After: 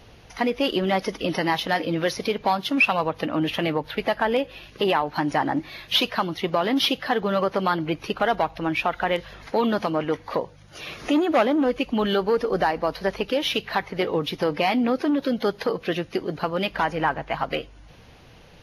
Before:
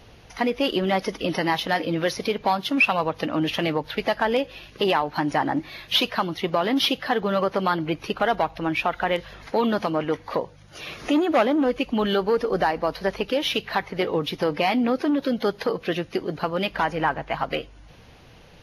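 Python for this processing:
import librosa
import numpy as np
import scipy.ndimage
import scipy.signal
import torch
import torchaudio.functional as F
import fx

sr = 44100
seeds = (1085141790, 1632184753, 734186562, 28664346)

y = fx.dynamic_eq(x, sr, hz=5600.0, q=1.3, threshold_db=-47.0, ratio=4.0, max_db=-5, at=(3.01, 5.07))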